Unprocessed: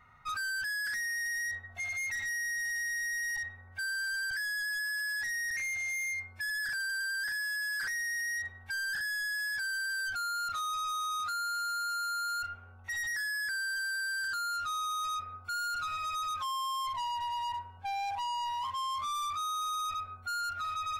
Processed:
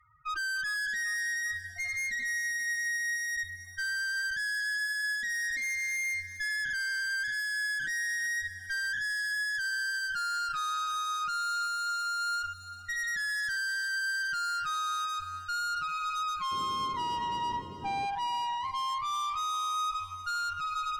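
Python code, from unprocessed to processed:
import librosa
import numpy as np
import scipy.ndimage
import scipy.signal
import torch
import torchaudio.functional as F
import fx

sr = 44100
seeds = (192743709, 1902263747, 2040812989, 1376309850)

p1 = fx.spec_topn(x, sr, count=8)
p2 = fx.cheby_harmonics(p1, sr, harmonics=(4,), levels_db=(-19,), full_scale_db=-29.5)
p3 = fx.backlash(p2, sr, play_db=-43.0)
p4 = p2 + F.gain(torch.from_numpy(p3), -5.5).numpy()
p5 = fx.dmg_noise_band(p4, sr, seeds[0], low_hz=62.0, high_hz=440.0, level_db=-45.0, at=(16.51, 18.05), fade=0.02)
p6 = p5 + fx.echo_single(p5, sr, ms=296, db=-21.5, dry=0)
p7 = fx.echo_crushed(p6, sr, ms=399, feedback_pct=55, bits=11, wet_db=-15)
y = F.gain(torch.from_numpy(p7), -1.5).numpy()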